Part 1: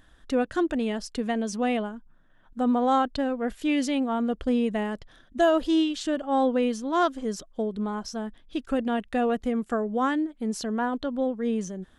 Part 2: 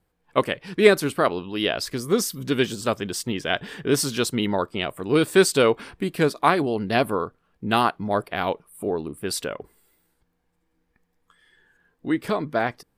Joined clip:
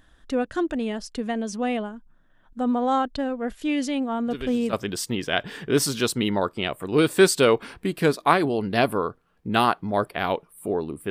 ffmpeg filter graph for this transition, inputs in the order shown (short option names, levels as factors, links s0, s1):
-filter_complex "[1:a]asplit=2[s0][s1];[0:a]apad=whole_dur=11.1,atrim=end=11.1,atrim=end=4.732[s2];[s1]atrim=start=2.898:end=9.27[s3];[s0]atrim=start=2.44:end=2.9,asetpts=PTS-STARTPTS,volume=0.237,afade=t=in:d=0.004:c=hsin,afade=t=out:st=0.456:d=0.004:c=hsin,adelay=4270[s4];[s2][s3]acrossfade=d=0.004:c1=hsin:c2=hsin[s5];[s5][s4]amix=inputs=2:normalize=0"